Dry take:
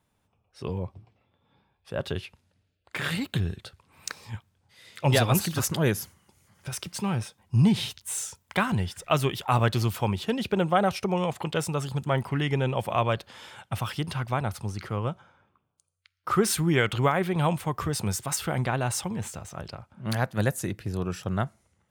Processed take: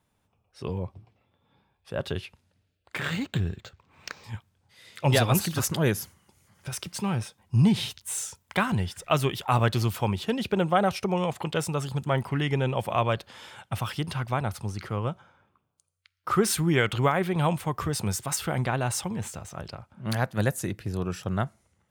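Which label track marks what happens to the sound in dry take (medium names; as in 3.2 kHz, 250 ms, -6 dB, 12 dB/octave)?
2.980000	4.240000	decimation joined by straight lines rate divided by 4×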